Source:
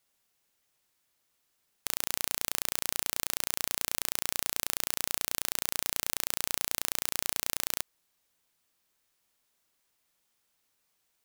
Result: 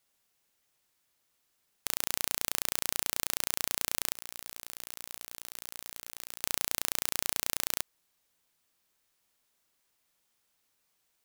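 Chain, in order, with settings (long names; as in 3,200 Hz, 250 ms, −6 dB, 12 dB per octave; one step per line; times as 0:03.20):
0:04.15–0:06.41: compressor whose output falls as the input rises −44 dBFS, ratio −1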